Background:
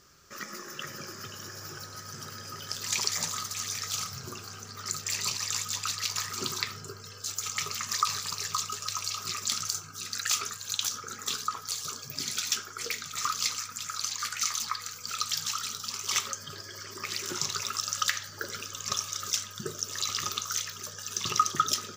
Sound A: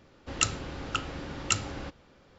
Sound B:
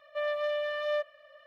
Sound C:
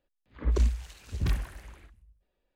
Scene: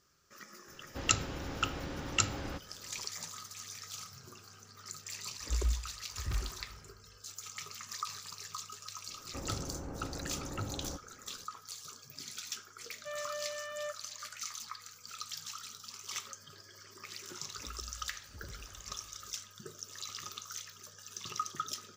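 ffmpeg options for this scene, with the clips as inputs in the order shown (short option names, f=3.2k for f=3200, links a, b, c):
-filter_complex "[1:a]asplit=2[a][b];[3:a]asplit=2[c][d];[0:a]volume=-12dB[e];[c]equalizer=f=200:w=1:g=-8.5[f];[b]lowpass=1k[g];[2:a]highpass=560[h];[d]acompressor=threshold=-37dB:ratio=6:attack=3.2:release=140:knee=1:detection=peak[i];[a]atrim=end=2.38,asetpts=PTS-STARTPTS,volume=-2dB,afade=t=in:d=0.004:c=hsin,afade=t=out:st=2.376:d=0.004:c=hsin,adelay=680[j];[f]atrim=end=2.55,asetpts=PTS-STARTPTS,volume=-6.5dB,afade=t=in:d=0.004:c=hsin,afade=t=out:st=2.546:d=0.004:c=hsin,adelay=222705S[k];[g]atrim=end=2.38,asetpts=PTS-STARTPTS,volume=-3dB,afade=t=in:d=0.004:c=hsin,afade=t=out:st=2.376:d=0.004:c=hsin,adelay=9070[l];[h]atrim=end=1.46,asetpts=PTS-STARTPTS,volume=-8dB,afade=t=in:d=0.004:c=hsin,afade=t=out:st=1.456:d=0.004:c=hsin,adelay=12900[m];[i]atrim=end=2.55,asetpts=PTS-STARTPTS,volume=-9.5dB,afade=t=in:d=0.004:c=hsin,afade=t=out:st=2.546:d=0.004:c=hsin,adelay=17220[n];[e][j][k][l][m][n]amix=inputs=6:normalize=0"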